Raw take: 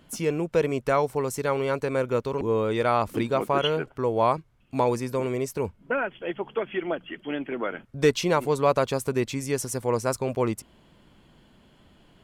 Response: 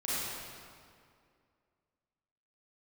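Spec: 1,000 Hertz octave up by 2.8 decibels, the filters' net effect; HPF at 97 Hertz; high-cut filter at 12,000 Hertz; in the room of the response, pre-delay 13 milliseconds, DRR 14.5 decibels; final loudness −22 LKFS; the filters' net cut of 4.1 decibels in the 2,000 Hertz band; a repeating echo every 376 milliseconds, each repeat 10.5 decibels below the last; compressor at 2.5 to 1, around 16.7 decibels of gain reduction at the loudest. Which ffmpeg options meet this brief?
-filter_complex "[0:a]highpass=97,lowpass=12000,equalizer=frequency=1000:width_type=o:gain=5.5,equalizer=frequency=2000:width_type=o:gain=-8.5,acompressor=threshold=-41dB:ratio=2.5,aecho=1:1:376|752|1128:0.299|0.0896|0.0269,asplit=2[link_01][link_02];[1:a]atrim=start_sample=2205,adelay=13[link_03];[link_02][link_03]afir=irnorm=-1:irlink=0,volume=-21dB[link_04];[link_01][link_04]amix=inputs=2:normalize=0,volume=16.5dB"

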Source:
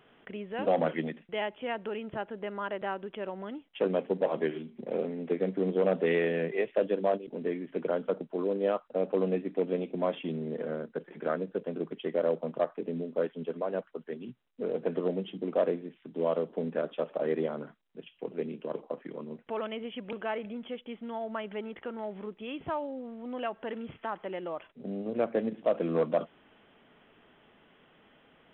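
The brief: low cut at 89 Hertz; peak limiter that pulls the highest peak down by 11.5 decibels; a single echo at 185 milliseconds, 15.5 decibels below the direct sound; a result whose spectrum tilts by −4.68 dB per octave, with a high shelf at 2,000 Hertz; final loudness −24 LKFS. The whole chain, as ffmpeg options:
ffmpeg -i in.wav -af "highpass=89,highshelf=frequency=2000:gain=4.5,alimiter=level_in=0.5dB:limit=-24dB:level=0:latency=1,volume=-0.5dB,aecho=1:1:185:0.168,volume=12.5dB" out.wav

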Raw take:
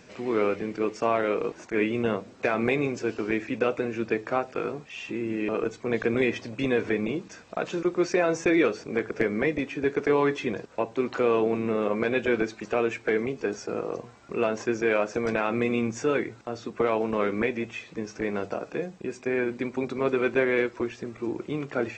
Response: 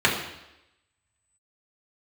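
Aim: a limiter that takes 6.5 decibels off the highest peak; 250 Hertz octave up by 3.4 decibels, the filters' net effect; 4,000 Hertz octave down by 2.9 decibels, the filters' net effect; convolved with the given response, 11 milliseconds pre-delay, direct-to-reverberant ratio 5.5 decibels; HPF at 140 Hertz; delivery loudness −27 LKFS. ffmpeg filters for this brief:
-filter_complex "[0:a]highpass=140,equalizer=frequency=250:width_type=o:gain=5,equalizer=frequency=4000:width_type=o:gain=-4,alimiter=limit=-15.5dB:level=0:latency=1,asplit=2[link_01][link_02];[1:a]atrim=start_sample=2205,adelay=11[link_03];[link_02][link_03]afir=irnorm=-1:irlink=0,volume=-24dB[link_04];[link_01][link_04]amix=inputs=2:normalize=0,volume=-0.5dB"

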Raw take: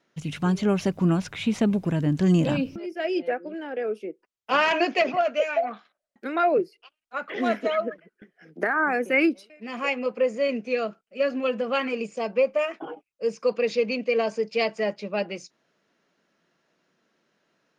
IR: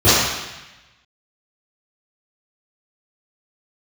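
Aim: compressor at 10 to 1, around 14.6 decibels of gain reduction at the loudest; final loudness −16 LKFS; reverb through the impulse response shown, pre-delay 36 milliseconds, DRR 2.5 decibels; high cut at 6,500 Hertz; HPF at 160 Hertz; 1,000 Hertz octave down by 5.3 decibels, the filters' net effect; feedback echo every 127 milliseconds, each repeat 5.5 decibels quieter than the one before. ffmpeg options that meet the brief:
-filter_complex "[0:a]highpass=160,lowpass=6500,equalizer=frequency=1000:width_type=o:gain=-8.5,acompressor=threshold=-34dB:ratio=10,aecho=1:1:127|254|381|508|635|762|889:0.531|0.281|0.149|0.079|0.0419|0.0222|0.0118,asplit=2[link_01][link_02];[1:a]atrim=start_sample=2205,adelay=36[link_03];[link_02][link_03]afir=irnorm=-1:irlink=0,volume=-29.5dB[link_04];[link_01][link_04]amix=inputs=2:normalize=0,volume=18.5dB"

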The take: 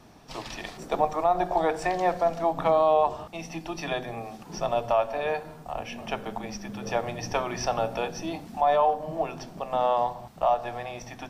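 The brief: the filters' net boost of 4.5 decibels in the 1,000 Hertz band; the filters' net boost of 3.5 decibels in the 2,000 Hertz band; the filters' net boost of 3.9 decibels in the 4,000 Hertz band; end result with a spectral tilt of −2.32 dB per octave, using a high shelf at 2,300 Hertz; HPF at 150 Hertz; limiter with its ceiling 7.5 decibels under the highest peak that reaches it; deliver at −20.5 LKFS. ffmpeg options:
ffmpeg -i in.wav -af "highpass=150,equalizer=frequency=1000:width_type=o:gain=6.5,equalizer=frequency=2000:width_type=o:gain=3,highshelf=frequency=2300:gain=-5.5,equalizer=frequency=4000:width_type=o:gain=9,volume=6.5dB,alimiter=limit=-6.5dB:level=0:latency=1" out.wav

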